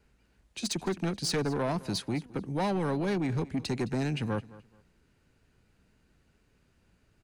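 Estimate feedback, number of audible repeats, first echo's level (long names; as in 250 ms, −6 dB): 25%, 2, −19.5 dB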